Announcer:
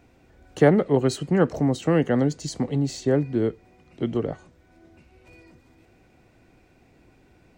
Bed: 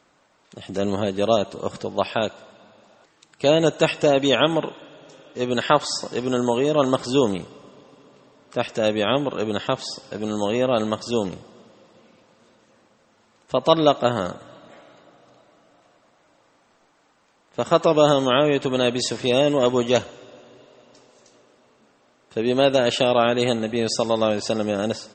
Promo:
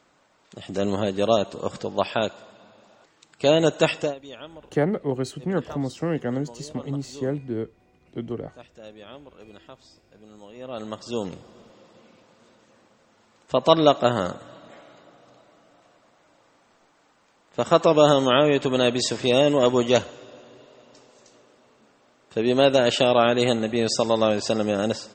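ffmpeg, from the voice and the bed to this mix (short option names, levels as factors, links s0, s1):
-filter_complex "[0:a]adelay=4150,volume=0.531[s0];[1:a]volume=11.9,afade=t=out:st=3.95:d=0.2:silence=0.0841395,afade=t=in:st=10.55:d=1.26:silence=0.0749894[s1];[s0][s1]amix=inputs=2:normalize=0"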